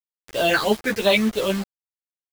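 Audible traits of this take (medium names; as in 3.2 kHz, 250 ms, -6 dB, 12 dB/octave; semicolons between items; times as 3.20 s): phasing stages 6, 3 Hz, lowest notch 730–2100 Hz; a quantiser's noise floor 6-bit, dither none; a shimmering, thickened sound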